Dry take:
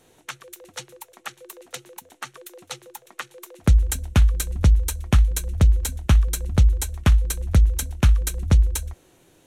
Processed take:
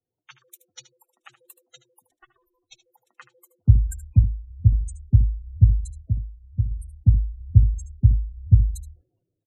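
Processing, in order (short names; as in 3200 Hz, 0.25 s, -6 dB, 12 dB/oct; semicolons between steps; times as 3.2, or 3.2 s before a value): 2.11–2.85 minimum comb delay 2.7 ms; bit-crush 10-bit; spectral gate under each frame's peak -10 dB strong; 4.22–4.73 HPF 58 Hz 6 dB/oct; 6.01–6.71 tilt +1.5 dB/oct; on a send: echo 77 ms -13.5 dB; 6.74–7.06 on the sum: spectral repair 550–8400 Hz; bell 110 Hz +14.5 dB 0.52 oct; three-band expander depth 70%; gain -6.5 dB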